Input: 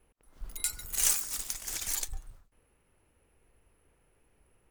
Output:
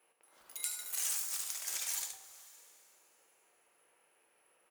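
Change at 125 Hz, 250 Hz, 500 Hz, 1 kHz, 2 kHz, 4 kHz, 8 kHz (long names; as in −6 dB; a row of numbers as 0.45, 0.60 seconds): below −30 dB, below −10 dB, −7.5 dB, −4.5 dB, −4.5 dB, −4.5 dB, −5.5 dB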